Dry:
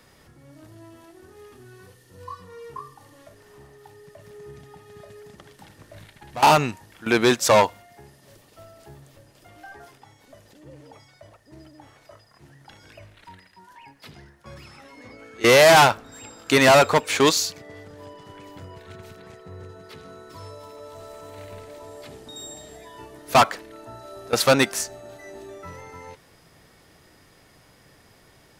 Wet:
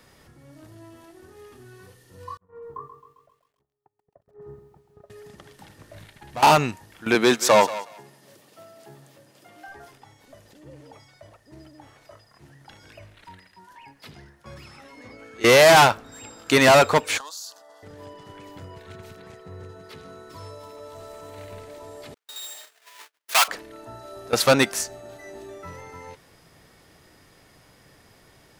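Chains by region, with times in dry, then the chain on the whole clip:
2.37–5.1 LPF 1300 Hz 24 dB/oct + gate -44 dBFS, range -36 dB + lo-fi delay 0.133 s, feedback 55%, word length 11-bit, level -10 dB
7.15–9.68 HPF 140 Hz 24 dB/oct + thinning echo 0.183 s, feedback 19%, high-pass 570 Hz, level -13.5 dB
17.18–17.83 HPF 390 Hz 24 dB/oct + compressor 20:1, threshold -30 dBFS + fixed phaser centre 940 Hz, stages 4
22.14–23.48 half-waves squared off + HPF 1400 Hz + gate -46 dBFS, range -40 dB
whole clip: dry

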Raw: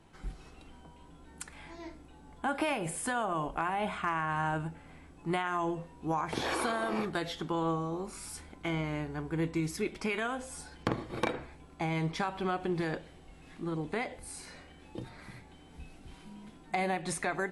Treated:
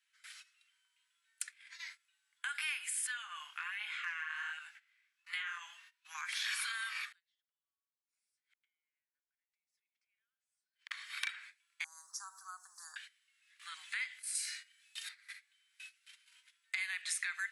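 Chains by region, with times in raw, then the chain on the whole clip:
3.07–6.15 chorus 1.3 Hz, delay 19 ms, depth 7.5 ms + bell 8800 Hz -11.5 dB 0.48 oct
7.12–10.91 compressor 12:1, threshold -38 dBFS + high shelf 9700 Hz -11 dB + flipped gate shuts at -39 dBFS, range -30 dB
11.84–12.96 elliptic band-stop 1100–6000 Hz, stop band 60 dB + bell 400 Hz -4.5 dB 2 oct
14.35–15.09 HPF 48 Hz + high shelf 3100 Hz +10 dB + doubler 38 ms -10.5 dB
whole clip: gate -46 dBFS, range -20 dB; steep high-pass 1600 Hz 36 dB/oct; compressor 2:1, threshold -53 dBFS; gain +10.5 dB

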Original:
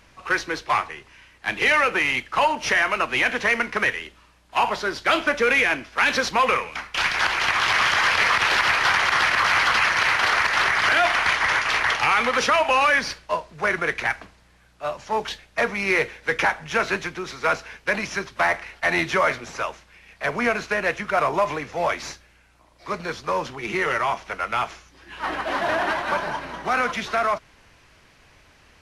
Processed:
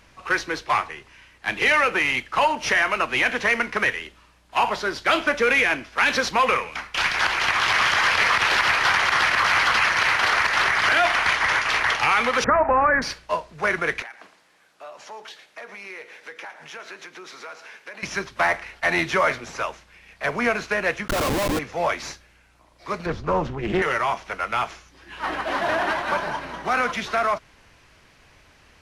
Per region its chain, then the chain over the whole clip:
12.44–13.02 steep low-pass 1900 Hz 48 dB/oct + low shelf 270 Hz +11 dB
14.02–18.03 HPF 340 Hz + compressor 4:1, threshold -38 dBFS + echo 0.113 s -14.5 dB
21.08–21.59 bell 2100 Hz -6.5 dB 2.1 oct + comb 3.7 ms, depth 78% + Schmitt trigger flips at -28 dBFS
23.06–23.82 tilt -3.5 dB/oct + Doppler distortion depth 0.38 ms
whole clip: dry

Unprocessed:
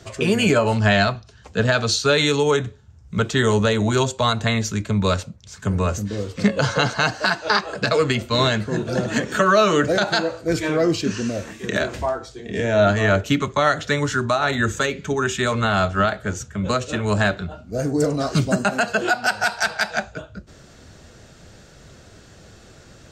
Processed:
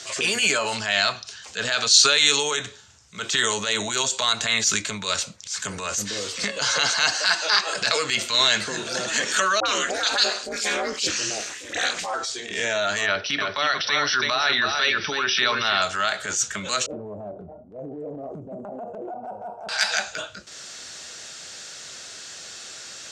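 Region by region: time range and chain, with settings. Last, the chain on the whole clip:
9.6–12.14 dispersion highs, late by 57 ms, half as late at 1200 Hz + ring modulator 110 Hz + three-band expander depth 40%
13.06–15.82 brick-wall FIR low-pass 6000 Hz + echo 0.323 s -7.5 dB
16.86–19.69 inverse Chebyshev low-pass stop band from 1700 Hz, stop band 50 dB + compressor 3:1, threshold -27 dBFS
whole clip: compressor, threshold -23 dBFS; weighting filter ITU-R 468; transient shaper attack -9 dB, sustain +4 dB; gain +4 dB

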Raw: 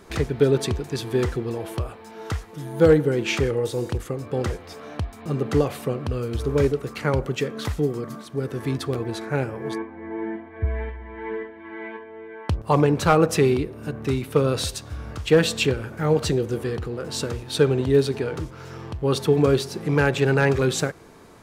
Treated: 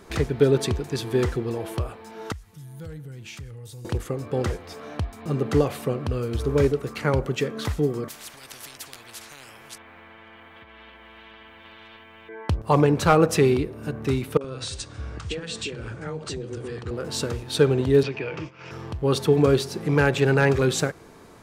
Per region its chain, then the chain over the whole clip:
2.32–3.85 EQ curve 120 Hz 0 dB, 360 Hz -19 dB, 12000 Hz 0 dB + compressor 2.5:1, threshold -40 dBFS
8.08–12.29 compressor 2.5:1, threshold -34 dBFS + transient shaper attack +5 dB, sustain +1 dB + spectral compressor 10:1
14.37–16.91 steep low-pass 9400 Hz 72 dB/oct + compressor 10:1, threshold -27 dBFS + three bands offset in time mids, highs, lows 40/70 ms, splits 190/730 Hz
18.03–18.71 expander -33 dBFS + speaker cabinet 160–5100 Hz, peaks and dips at 240 Hz -10 dB, 420 Hz -7 dB, 770 Hz -4 dB, 1400 Hz -4 dB, 2500 Hz +10 dB, 4000 Hz -10 dB + three-band squash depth 100%
whole clip: dry

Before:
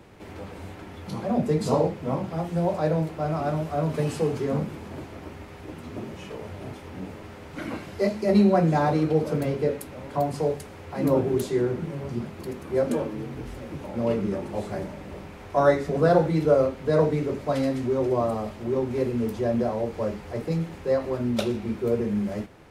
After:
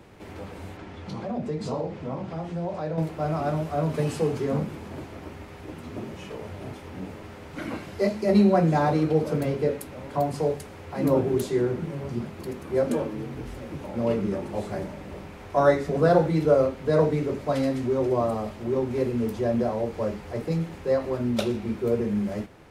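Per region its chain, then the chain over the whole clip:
0.77–2.98 LPF 6300 Hz + compressor 2:1, threshold -31 dBFS
whole clip: dry

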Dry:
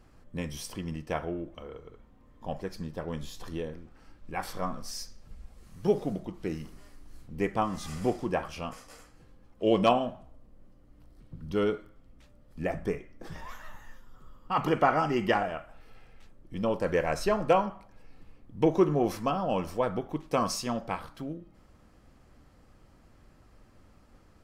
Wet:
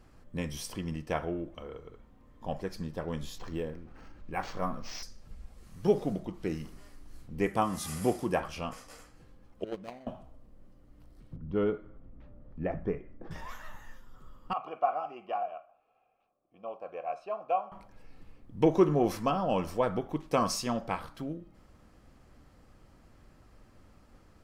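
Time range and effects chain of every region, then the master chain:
3.38–5.03 notch 3500 Hz, Q 15 + upward compressor, threshold -41 dBFS + decimation joined by straight lines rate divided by 4×
7.46–8.4 HPF 55 Hz + bell 11000 Hz +13.5 dB 0.74 oct
9.64–10.07 median filter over 41 samples + gate -21 dBFS, range -20 dB
11.36–13.31 upward compressor, threshold -40 dBFS + tape spacing loss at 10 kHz 35 dB + mismatched tape noise reduction decoder only
14.53–17.72 vowel filter a + mismatched tape noise reduction decoder only
whole clip: dry

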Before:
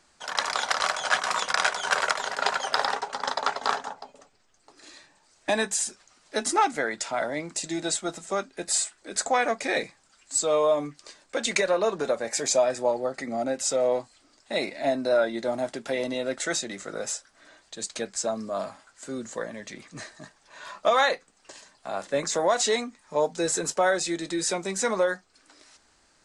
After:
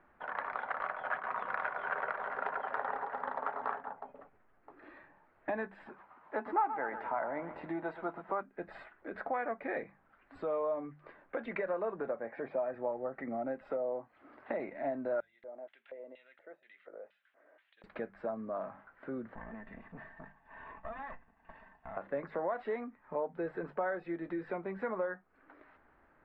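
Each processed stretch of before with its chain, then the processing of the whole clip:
1.18–3.73 bell 5200 Hz +3 dB 0.3 oct + echo with dull and thin repeats by turns 0.109 s, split 1100 Hz, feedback 57%, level -4.5 dB
5.86–8.41 HPF 120 Hz 6 dB/oct + bell 960 Hz +11.5 dB 0.72 oct + lo-fi delay 0.12 s, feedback 55%, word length 6-bit, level -11.5 dB
12.06–12.74 HPF 120 Hz + air absorption 220 m
13.69–14.6 treble ducked by the level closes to 970 Hz, closed at -20.5 dBFS + HPF 180 Hz 6 dB/oct + three-band squash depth 70%
15.2–17.84 weighting filter D + compressor 2.5:1, threshold -46 dBFS + LFO band-pass square 2.1 Hz 540–3200 Hz
19.35–21.97 minimum comb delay 1.1 ms + compressor 2.5:1, threshold -46 dBFS + comb 4.5 ms, depth 45%
whole clip: inverse Chebyshev low-pass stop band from 6000 Hz, stop band 60 dB; notches 50/100/150/200 Hz; compressor 2:1, threshold -41 dBFS

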